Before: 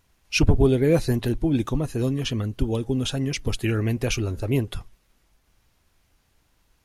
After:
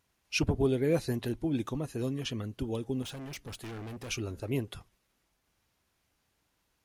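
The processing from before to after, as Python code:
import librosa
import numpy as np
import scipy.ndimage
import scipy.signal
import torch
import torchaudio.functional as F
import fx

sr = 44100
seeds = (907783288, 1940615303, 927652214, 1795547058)

y = fx.highpass(x, sr, hz=130.0, slope=6)
y = fx.overload_stage(y, sr, gain_db=32.0, at=(3.02, 4.11))
y = y * 10.0 ** (-7.5 / 20.0)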